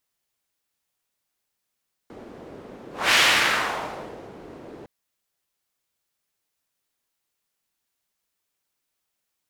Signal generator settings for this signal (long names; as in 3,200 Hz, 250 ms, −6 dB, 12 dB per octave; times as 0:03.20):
pass-by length 2.76 s, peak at 0:01.04, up 0.25 s, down 1.26 s, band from 380 Hz, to 2,500 Hz, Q 1.2, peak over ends 25 dB